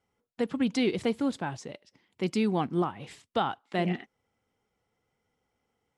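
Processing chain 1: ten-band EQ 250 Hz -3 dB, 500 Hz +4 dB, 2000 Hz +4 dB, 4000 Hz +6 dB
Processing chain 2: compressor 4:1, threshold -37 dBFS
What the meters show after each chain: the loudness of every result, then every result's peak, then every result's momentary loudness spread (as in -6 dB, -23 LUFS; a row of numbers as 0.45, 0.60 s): -29.0, -41.0 LUFS; -11.0, -24.0 dBFS; 15, 9 LU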